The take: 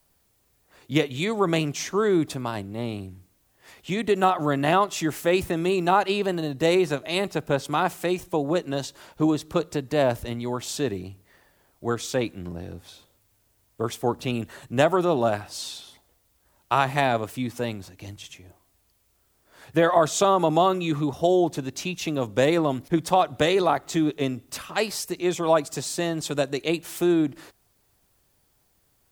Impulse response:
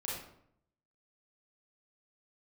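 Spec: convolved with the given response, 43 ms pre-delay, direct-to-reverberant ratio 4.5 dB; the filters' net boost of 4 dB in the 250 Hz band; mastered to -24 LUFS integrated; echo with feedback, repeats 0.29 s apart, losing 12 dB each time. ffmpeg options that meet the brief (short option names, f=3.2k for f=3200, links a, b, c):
-filter_complex "[0:a]equalizer=f=250:t=o:g=6,aecho=1:1:290|580|870:0.251|0.0628|0.0157,asplit=2[a][b];[1:a]atrim=start_sample=2205,adelay=43[c];[b][c]afir=irnorm=-1:irlink=0,volume=-6.5dB[d];[a][d]amix=inputs=2:normalize=0,volume=-3dB"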